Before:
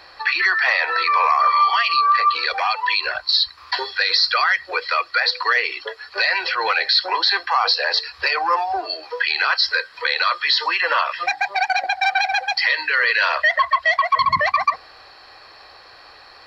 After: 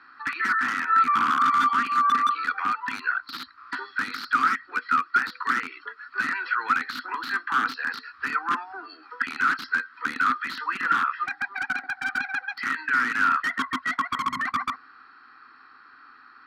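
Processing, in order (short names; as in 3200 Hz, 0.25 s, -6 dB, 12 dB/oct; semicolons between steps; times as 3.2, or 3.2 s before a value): wrapped overs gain 10.5 dB; double band-pass 590 Hz, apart 2.4 oct; gain +5.5 dB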